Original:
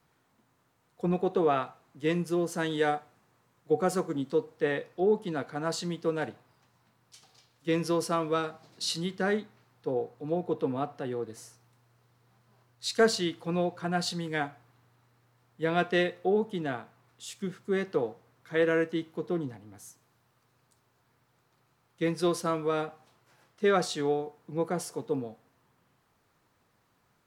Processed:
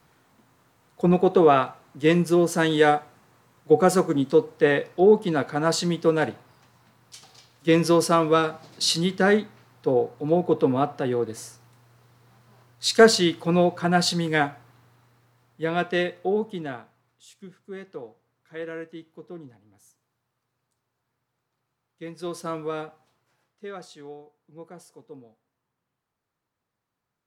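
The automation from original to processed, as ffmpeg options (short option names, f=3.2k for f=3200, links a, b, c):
-af "volume=17.5dB,afade=t=out:st=14.43:d=1.28:silence=0.446684,afade=t=out:st=16.41:d=0.85:silence=0.281838,afade=t=in:st=22.14:d=0.44:silence=0.375837,afade=t=out:st=22.58:d=1.09:silence=0.237137"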